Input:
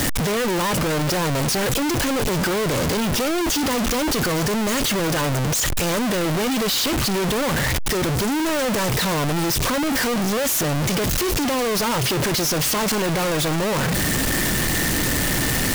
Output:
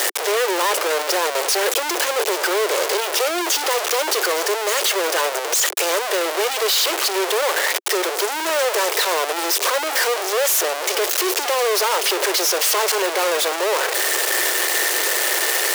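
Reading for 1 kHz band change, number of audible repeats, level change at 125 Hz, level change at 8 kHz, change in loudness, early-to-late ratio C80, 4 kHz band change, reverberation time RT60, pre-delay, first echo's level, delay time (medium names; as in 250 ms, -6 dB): +3.5 dB, no echo, under -40 dB, +3.5 dB, +2.0 dB, no reverb, +3.5 dB, no reverb, no reverb, no echo, no echo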